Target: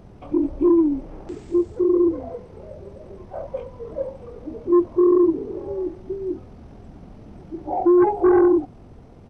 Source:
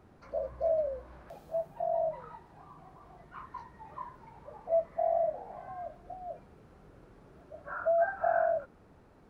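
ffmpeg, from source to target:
-af "asetrate=23361,aresample=44100,atempo=1.88775,aeval=exprs='0.126*sin(PI/2*1.58*val(0)/0.126)':c=same,volume=7dB"

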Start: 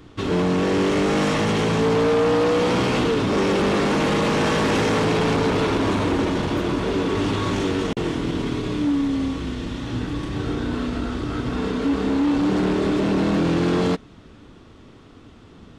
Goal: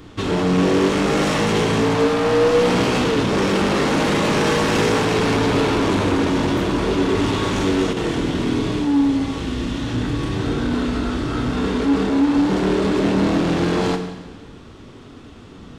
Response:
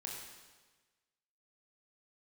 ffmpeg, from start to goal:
-filter_complex "[0:a]highshelf=f=5.4k:g=3,asoftclip=type=tanh:threshold=-19.5dB,asplit=2[a][b];[1:a]atrim=start_sample=2205[c];[b][c]afir=irnorm=-1:irlink=0,volume=2dB[d];[a][d]amix=inputs=2:normalize=0"

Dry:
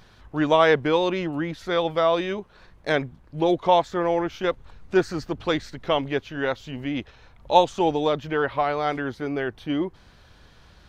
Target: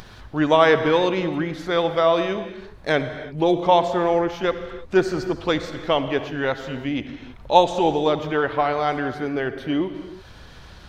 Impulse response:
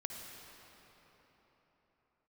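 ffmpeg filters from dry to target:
-filter_complex "[0:a]acompressor=mode=upward:threshold=-37dB:ratio=2.5,asplit=2[a][b];[1:a]atrim=start_sample=2205,afade=t=out:st=0.39:d=0.01,atrim=end_sample=17640[c];[b][c]afir=irnorm=-1:irlink=0,volume=1.5dB[d];[a][d]amix=inputs=2:normalize=0,volume=-3dB"

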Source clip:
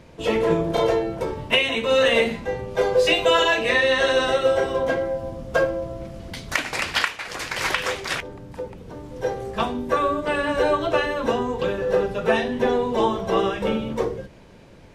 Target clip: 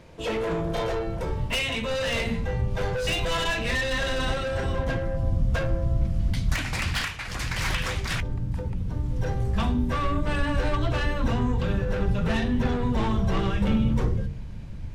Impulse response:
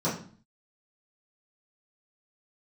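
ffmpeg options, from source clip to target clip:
-af "bandreject=f=45.67:t=h:w=4,bandreject=f=91.34:t=h:w=4,bandreject=f=137.01:t=h:w=4,bandreject=f=182.68:t=h:w=4,bandreject=f=228.35:t=h:w=4,bandreject=f=274.02:t=h:w=4,bandreject=f=319.69:t=h:w=4,bandreject=f=365.36:t=h:w=4,bandreject=f=411.03:t=h:w=4,bandreject=f=456.7:t=h:w=4,asoftclip=type=tanh:threshold=-21dB,asubboost=boost=11.5:cutoff=130,volume=-1.5dB"

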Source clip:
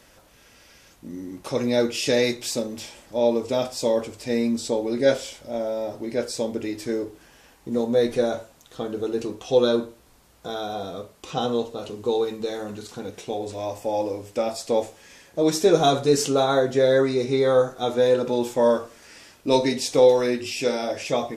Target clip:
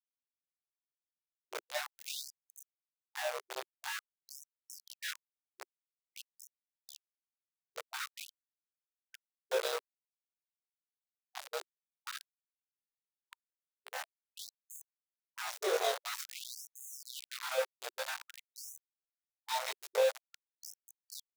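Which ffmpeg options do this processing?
-af "afftfilt=real='re':imag='-im':win_size=2048:overlap=0.75,aeval=exprs='val(0)*gte(abs(val(0)),0.075)':c=same,afftfilt=real='re*gte(b*sr/1024,360*pow(6300/360,0.5+0.5*sin(2*PI*0.49*pts/sr)))':imag='im*gte(b*sr/1024,360*pow(6300/360,0.5+0.5*sin(2*PI*0.49*pts/sr)))':win_size=1024:overlap=0.75,volume=-7.5dB"

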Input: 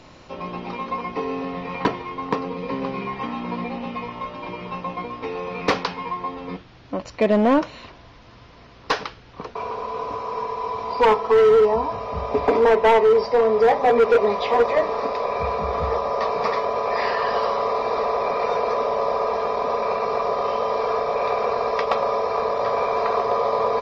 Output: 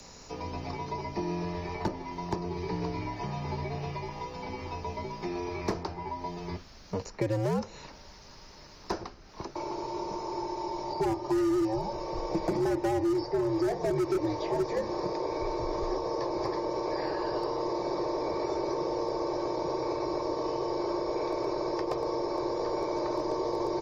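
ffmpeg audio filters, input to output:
-filter_complex "[0:a]afreqshift=-94,aexciter=amount=9.1:drive=3.2:freq=4.8k,acrossover=split=250|810|2200[a][b][c][d];[a]acompressor=threshold=-28dB:ratio=4[e];[b]acompressor=threshold=-26dB:ratio=4[f];[c]acompressor=threshold=-40dB:ratio=4[g];[d]acompressor=threshold=-45dB:ratio=4[h];[e][f][g][h]amix=inputs=4:normalize=0,volume=-4.5dB"

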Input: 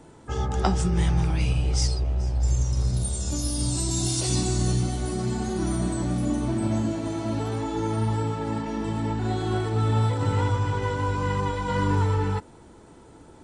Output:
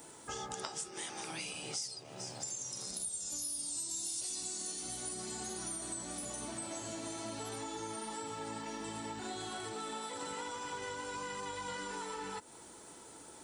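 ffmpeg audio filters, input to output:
-af "afftfilt=real='re*lt(hypot(re,im),0.398)':imag='im*lt(hypot(re,im),0.398)':win_size=1024:overlap=0.75,aemphasis=mode=production:type=riaa,acompressor=threshold=-37dB:ratio=5,volume=-2.5dB"

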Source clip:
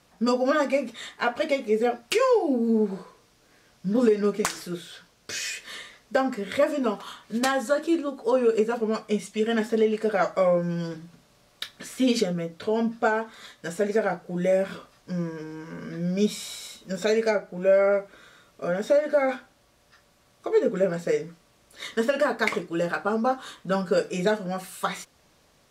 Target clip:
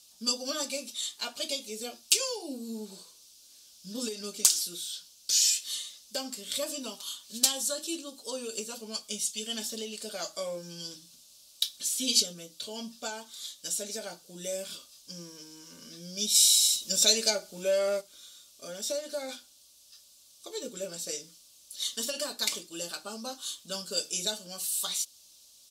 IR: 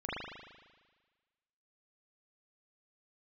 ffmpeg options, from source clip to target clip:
-filter_complex "[0:a]aecho=1:1:3.4:0.32,asplit=3[a][b][c];[a]afade=t=out:st=16.34:d=0.02[d];[b]acontrast=89,afade=t=in:st=16.34:d=0.02,afade=t=out:st=18:d=0.02[e];[c]afade=t=in:st=18:d=0.02[f];[d][e][f]amix=inputs=3:normalize=0,aexciter=amount=15.2:drive=5.8:freq=3k,volume=-16dB"

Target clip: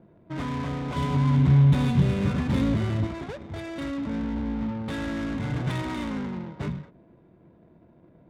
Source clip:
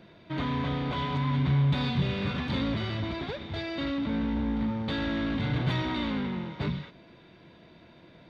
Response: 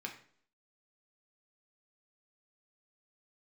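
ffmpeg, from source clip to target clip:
-filter_complex "[0:a]asettb=1/sr,asplit=3[a][b][c];[a]atrim=end=0.964[d];[b]atrim=start=0.96:end=3.07,asetpts=PTS-STARTPTS,afade=t=in:d=0.004:c=qsin,afade=t=out:st=2.106:d=0.004:c=qsin,lowshelf=f=490:g=7.5[e];[c]atrim=start=3.066[f];[d][e]acrossfade=d=0.004:c1=hsin:c2=qsin[g];[g][f]acrossfade=d=0.004:c1=qsin:c2=hsin,adynamicsmooth=sensitivity=7:basefreq=600"

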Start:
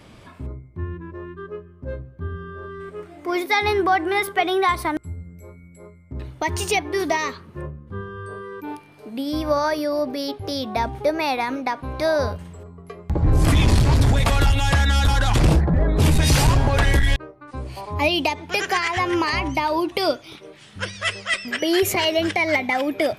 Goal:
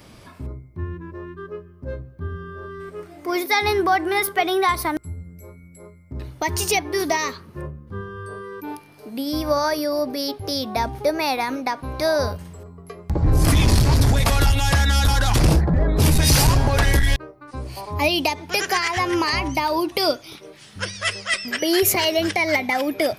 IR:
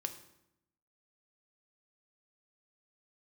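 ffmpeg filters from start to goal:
-af "aexciter=amount=2.4:drive=2:freq=4.5k"

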